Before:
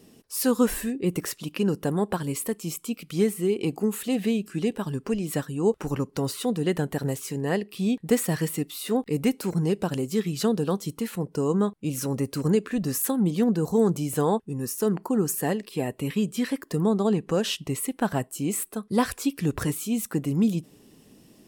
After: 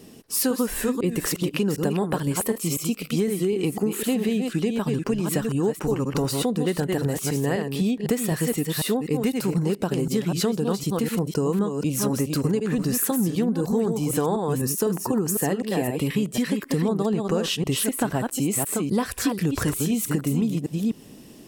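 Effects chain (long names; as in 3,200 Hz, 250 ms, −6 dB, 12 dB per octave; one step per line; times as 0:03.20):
delay that plays each chunk backwards 252 ms, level −6 dB
downward compressor, threshold −27 dBFS, peak gain reduction 11.5 dB
level +7 dB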